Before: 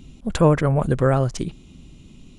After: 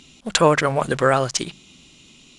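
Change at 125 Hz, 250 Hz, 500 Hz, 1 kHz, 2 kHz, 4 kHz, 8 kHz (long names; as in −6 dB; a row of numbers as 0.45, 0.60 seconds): −7.5, −3.5, +1.5, +5.5, +9.0, +12.5, +11.5 decibels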